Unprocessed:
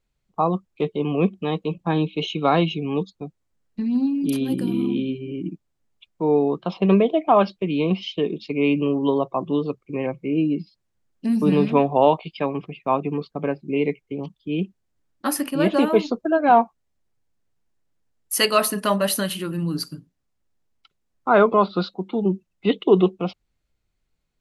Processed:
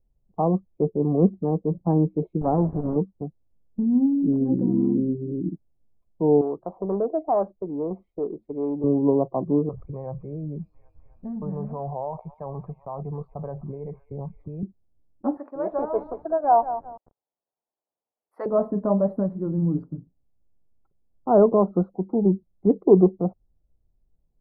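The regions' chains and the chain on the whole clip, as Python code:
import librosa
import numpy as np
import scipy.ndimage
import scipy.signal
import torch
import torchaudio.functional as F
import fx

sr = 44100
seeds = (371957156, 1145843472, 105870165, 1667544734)

y = fx.chain(x, sr, fx.delta_mod(bps=64000, step_db=-20.5),
    fx.high_shelf(hz=2900.0, db=-10.5),
    fx.transformer_sat(knee_hz=770.0), at=(2.41, 2.96))
y = fx.chain(y, sr, fx.peak_eq(hz=170.0, db=-14.5, octaves=1.6),
    fx.transformer_sat(knee_hz=1400.0), at=(6.41, 8.84))
y = fx.chain(y, sr, fx.tone_stack(knobs='10-0-10'),
    fx.echo_wet_highpass(ms=260, feedback_pct=50, hz=3600.0, wet_db=-10.0),
    fx.env_flatten(amount_pct=70), at=(9.69, 14.63))
y = fx.chain(y, sr, fx.highpass(hz=730.0, slope=12),
    fx.peak_eq(hz=3600.0, db=14.0, octaves=2.4),
    fx.echo_crushed(ms=183, feedback_pct=35, bits=5, wet_db=-10.5), at=(15.37, 18.46))
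y = scipy.signal.sosfilt(scipy.signal.cheby2(4, 60, 2700.0, 'lowpass', fs=sr, output='sos'), y)
y = fx.low_shelf(y, sr, hz=100.0, db=9.5)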